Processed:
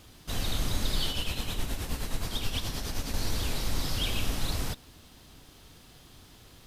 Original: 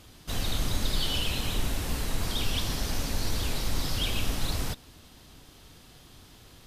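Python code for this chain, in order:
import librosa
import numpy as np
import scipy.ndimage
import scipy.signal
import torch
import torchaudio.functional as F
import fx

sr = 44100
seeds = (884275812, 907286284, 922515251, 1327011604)

y = fx.tremolo(x, sr, hz=9.5, depth=0.54, at=(1.09, 3.14))
y = fx.quant_dither(y, sr, seeds[0], bits=12, dither='triangular')
y = y * librosa.db_to_amplitude(-1.0)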